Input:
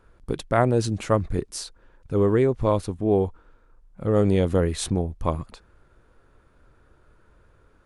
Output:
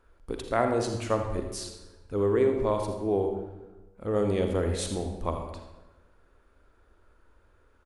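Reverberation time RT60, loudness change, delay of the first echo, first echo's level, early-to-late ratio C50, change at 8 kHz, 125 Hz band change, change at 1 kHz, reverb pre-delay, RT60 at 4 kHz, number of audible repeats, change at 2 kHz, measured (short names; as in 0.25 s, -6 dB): 1.2 s, -5.0 dB, 82 ms, -12.0 dB, 5.0 dB, -4.0 dB, -8.5 dB, -3.5 dB, 39 ms, 0.80 s, 1, -4.0 dB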